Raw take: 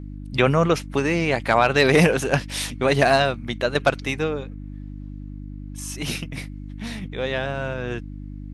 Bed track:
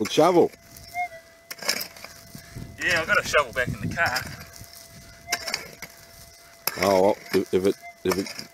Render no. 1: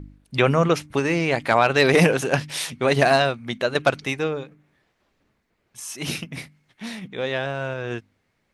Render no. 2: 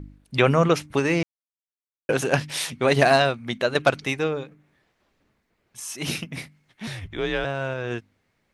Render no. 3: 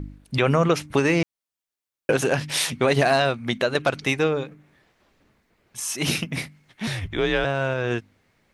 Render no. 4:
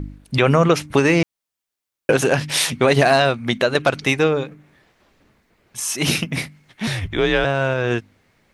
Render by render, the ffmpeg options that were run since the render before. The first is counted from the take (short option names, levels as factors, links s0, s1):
-af "bandreject=f=50:t=h:w=4,bandreject=f=100:t=h:w=4,bandreject=f=150:t=h:w=4,bandreject=f=200:t=h:w=4,bandreject=f=250:t=h:w=4,bandreject=f=300:t=h:w=4"
-filter_complex "[0:a]asettb=1/sr,asplit=3[s0][s1][s2];[s0]atrim=end=6.874[s3];[s1]atrim=start=6.87:end=7.45,asetpts=PTS-STARTPTS,afade=t=in:d=0.004:c=qsin,afade=t=out:st=0.576:d=0.004:c=qsin,afreqshift=-95[s4];[s2]atrim=start=7.446[s5];[s3][s4]acrossfade=d=0.004:c1=hsin:c2=qsin[s6];[s6][s5]acrossfade=d=0.004:c1=qsin:c2=hsin,asplit=3[s7][s8][s9];[s7]atrim=end=1.23,asetpts=PTS-STARTPTS,afade=t=out:st=1.226:d=0.004:c=hsin[s10];[s8]atrim=start=1.23:end=2.09,asetpts=PTS-STARTPTS,volume=0[s11];[s9]atrim=start=2.09,asetpts=PTS-STARTPTS,afade=t=in:d=0.004:c=hsin[s12];[s10][s11][s12]concat=n=3:v=0:a=1"
-filter_complex "[0:a]asplit=2[s0][s1];[s1]acompressor=threshold=0.0447:ratio=6,volume=0.944[s2];[s0][s2]amix=inputs=2:normalize=0,alimiter=limit=0.398:level=0:latency=1:release=92"
-af "volume=1.68"